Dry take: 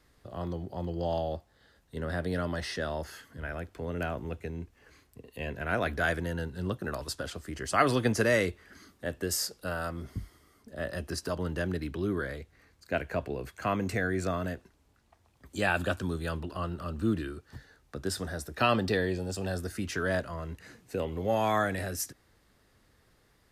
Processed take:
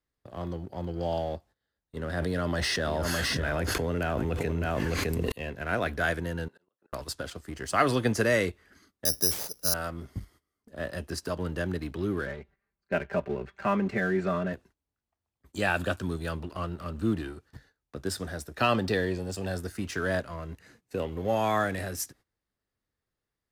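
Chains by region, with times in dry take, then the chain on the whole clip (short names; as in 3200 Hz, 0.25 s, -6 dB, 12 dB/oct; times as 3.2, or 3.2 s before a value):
2.17–5.32 echo 0.61 s -12.5 dB + fast leveller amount 100%
6.48–6.93 HPF 550 Hz + high shelf 3200 Hz -9.5 dB + auto swell 0.404 s
9.05–9.74 LPF 1200 Hz 6 dB/oct + careless resampling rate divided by 8×, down none, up zero stuff
12.26–14.53 LPF 2500 Hz + comb 5.1 ms, depth 83%
whole clip: gate -53 dBFS, range -17 dB; sample leveller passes 1; gain -3 dB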